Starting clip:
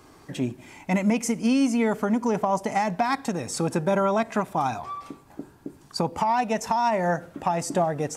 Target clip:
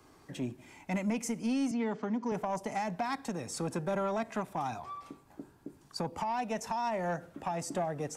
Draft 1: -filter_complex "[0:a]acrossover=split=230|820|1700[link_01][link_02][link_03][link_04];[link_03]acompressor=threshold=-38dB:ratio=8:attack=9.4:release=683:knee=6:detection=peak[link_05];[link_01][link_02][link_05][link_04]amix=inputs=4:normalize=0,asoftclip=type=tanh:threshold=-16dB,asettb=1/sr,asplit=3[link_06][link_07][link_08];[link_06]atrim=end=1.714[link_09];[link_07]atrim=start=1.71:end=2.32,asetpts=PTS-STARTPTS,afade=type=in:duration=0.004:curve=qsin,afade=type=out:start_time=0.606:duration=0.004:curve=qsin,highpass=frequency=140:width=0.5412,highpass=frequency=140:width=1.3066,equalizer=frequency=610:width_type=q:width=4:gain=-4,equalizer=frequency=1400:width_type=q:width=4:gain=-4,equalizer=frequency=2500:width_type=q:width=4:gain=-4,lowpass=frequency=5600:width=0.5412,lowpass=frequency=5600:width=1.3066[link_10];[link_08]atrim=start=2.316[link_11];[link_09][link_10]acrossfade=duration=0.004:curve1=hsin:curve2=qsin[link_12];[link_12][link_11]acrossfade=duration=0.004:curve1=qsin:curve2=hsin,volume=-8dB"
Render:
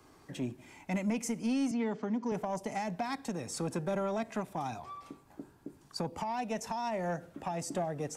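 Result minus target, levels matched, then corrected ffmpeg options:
downward compressor: peak gain reduction +10 dB
-filter_complex "[0:a]acrossover=split=230|820|1700[link_01][link_02][link_03][link_04];[link_03]acompressor=threshold=-26dB:ratio=8:attack=9.4:release=683:knee=6:detection=peak[link_05];[link_01][link_02][link_05][link_04]amix=inputs=4:normalize=0,asoftclip=type=tanh:threshold=-16dB,asettb=1/sr,asplit=3[link_06][link_07][link_08];[link_06]atrim=end=1.714[link_09];[link_07]atrim=start=1.71:end=2.32,asetpts=PTS-STARTPTS,afade=type=in:duration=0.004:curve=qsin,afade=type=out:start_time=0.606:duration=0.004:curve=qsin,highpass=frequency=140:width=0.5412,highpass=frequency=140:width=1.3066,equalizer=frequency=610:width_type=q:width=4:gain=-4,equalizer=frequency=1400:width_type=q:width=4:gain=-4,equalizer=frequency=2500:width_type=q:width=4:gain=-4,lowpass=frequency=5600:width=0.5412,lowpass=frequency=5600:width=1.3066[link_10];[link_08]atrim=start=2.316[link_11];[link_09][link_10]acrossfade=duration=0.004:curve1=hsin:curve2=qsin[link_12];[link_12][link_11]acrossfade=duration=0.004:curve1=qsin:curve2=hsin,volume=-8dB"

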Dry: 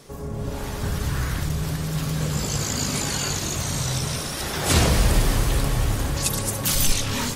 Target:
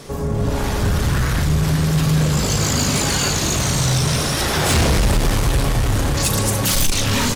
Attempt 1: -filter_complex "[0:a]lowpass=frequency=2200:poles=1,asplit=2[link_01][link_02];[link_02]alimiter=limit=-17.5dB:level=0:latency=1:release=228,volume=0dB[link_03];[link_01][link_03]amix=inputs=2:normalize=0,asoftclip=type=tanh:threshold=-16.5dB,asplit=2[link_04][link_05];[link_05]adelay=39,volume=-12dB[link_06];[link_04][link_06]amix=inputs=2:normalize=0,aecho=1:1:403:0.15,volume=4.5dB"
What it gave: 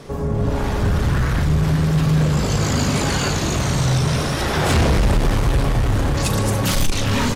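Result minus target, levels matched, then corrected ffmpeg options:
8,000 Hz band −6.0 dB
-filter_complex "[0:a]lowpass=frequency=8600:poles=1,asplit=2[link_01][link_02];[link_02]alimiter=limit=-17.5dB:level=0:latency=1:release=228,volume=0dB[link_03];[link_01][link_03]amix=inputs=2:normalize=0,asoftclip=type=tanh:threshold=-16.5dB,asplit=2[link_04][link_05];[link_05]adelay=39,volume=-12dB[link_06];[link_04][link_06]amix=inputs=2:normalize=0,aecho=1:1:403:0.15,volume=4.5dB"

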